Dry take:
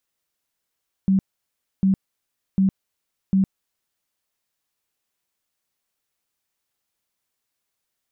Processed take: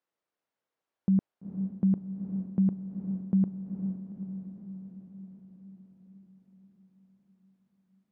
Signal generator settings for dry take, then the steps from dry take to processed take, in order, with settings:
tone bursts 192 Hz, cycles 21, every 0.75 s, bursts 4, -14 dBFS
band-pass filter 540 Hz, Q 0.59; on a send: echo that smears into a reverb 454 ms, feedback 62%, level -7.5 dB

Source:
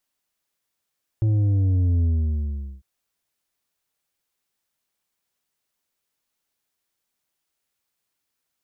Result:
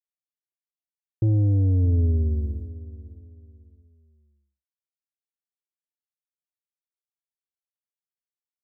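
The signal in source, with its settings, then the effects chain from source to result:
sub drop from 110 Hz, over 1.60 s, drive 6.5 dB, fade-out 0.79 s, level -17.5 dB
peaking EQ 400 Hz +9 dB 0.58 oct; expander -26 dBFS; feedback delay 614 ms, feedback 30%, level -16.5 dB

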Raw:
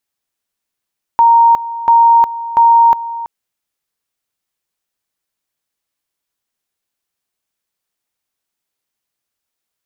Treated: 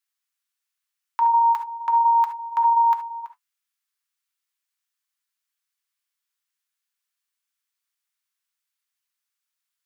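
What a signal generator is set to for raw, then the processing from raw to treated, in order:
two-level tone 929 Hz -4.5 dBFS, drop 15.5 dB, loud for 0.36 s, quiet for 0.33 s, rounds 3
high-pass 1.1 kHz 24 dB/octave; flange 1.4 Hz, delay 5 ms, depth 3.1 ms, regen -61%; gated-style reverb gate 90 ms rising, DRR 9 dB

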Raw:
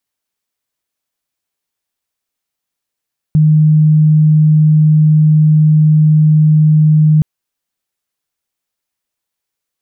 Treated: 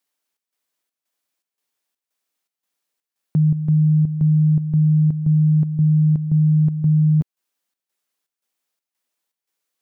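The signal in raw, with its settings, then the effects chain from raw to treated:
tone sine 154 Hz -5 dBFS 3.87 s
high-pass 210 Hz 12 dB/octave; square tremolo 1.9 Hz, depth 65%, duty 70%

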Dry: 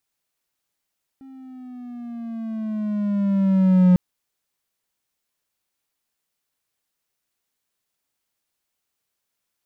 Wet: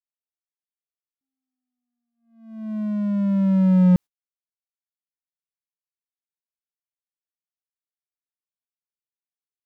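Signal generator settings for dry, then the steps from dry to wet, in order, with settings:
gliding synth tone triangle, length 2.75 s, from 269 Hz, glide -7 st, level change +30 dB, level -8 dB
gate -27 dBFS, range -49 dB

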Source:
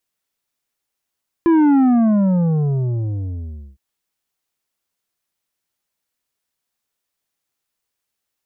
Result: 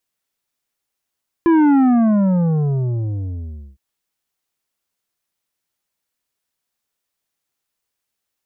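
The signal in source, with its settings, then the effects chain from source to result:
sub drop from 340 Hz, over 2.31 s, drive 8 dB, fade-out 2.05 s, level -11 dB
dynamic bell 1.8 kHz, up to +4 dB, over -36 dBFS, Q 0.72

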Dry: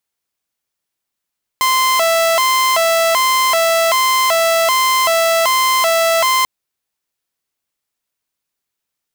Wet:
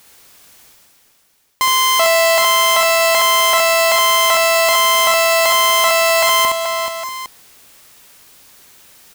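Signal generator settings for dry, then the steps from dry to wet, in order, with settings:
siren hi-lo 661–1040 Hz 1.3 per s saw -9 dBFS 4.84 s
reverse; upward compressor, threshold -22 dBFS; reverse; multi-tap echo 67/431/638/809 ms -3.5/-8.5/-16.5/-13 dB

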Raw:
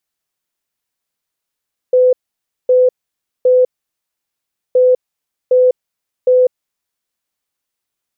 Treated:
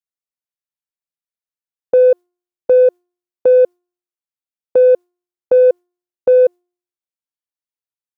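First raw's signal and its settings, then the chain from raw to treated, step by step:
beep pattern sine 505 Hz, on 0.20 s, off 0.56 s, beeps 3, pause 1.10 s, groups 2, -6.5 dBFS
gate with hold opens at -8 dBFS; de-hum 354.9 Hz, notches 29; in parallel at -10 dB: saturation -15 dBFS

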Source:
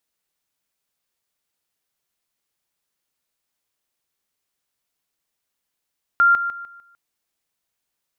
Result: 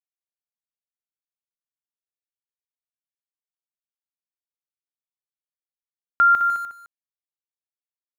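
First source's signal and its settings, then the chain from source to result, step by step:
level ladder 1.39 kHz -11 dBFS, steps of -10 dB, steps 5, 0.15 s 0.00 s
small samples zeroed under -39.5 dBFS; delay 210 ms -11 dB

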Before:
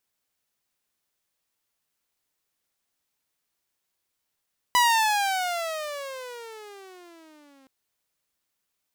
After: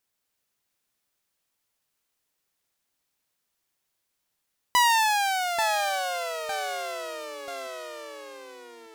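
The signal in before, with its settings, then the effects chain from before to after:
gliding synth tone saw, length 2.92 s, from 993 Hz, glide -23 st, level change -38 dB, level -13.5 dB
ever faster or slower copies 254 ms, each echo -2 st, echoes 3, each echo -6 dB

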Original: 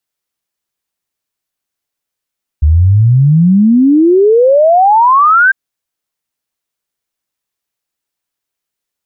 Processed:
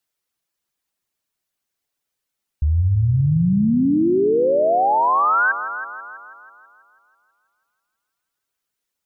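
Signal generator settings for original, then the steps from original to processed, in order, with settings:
log sweep 72 Hz -> 1.6 kHz 2.90 s -4 dBFS
reverb removal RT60 0.61 s; peak limiter -14 dBFS; on a send: multi-head delay 163 ms, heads first and second, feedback 50%, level -14 dB

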